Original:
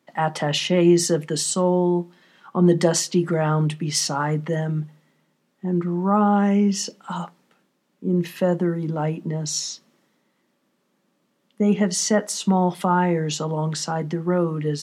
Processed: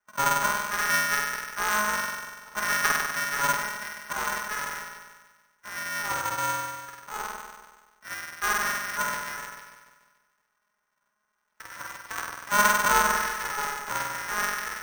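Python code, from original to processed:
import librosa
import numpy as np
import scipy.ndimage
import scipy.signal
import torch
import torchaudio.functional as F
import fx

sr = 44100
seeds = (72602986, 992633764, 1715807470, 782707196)

p1 = fx.band_invert(x, sr, width_hz=2000)
p2 = fx.bandpass_q(p1, sr, hz=1200.0, q=11.0)
p3 = p2 + 0.95 * np.pad(p2, (int(4.8 * sr / 1000.0), 0))[:len(p2)]
p4 = p3 + fx.room_flutter(p3, sr, wall_m=8.3, rt60_s=1.4, dry=0)
p5 = np.repeat(scipy.signal.resample_poly(p4, 1, 6), 6)[:len(p4)]
y = p5 * np.sign(np.sin(2.0 * np.pi * 210.0 * np.arange(len(p5)) / sr))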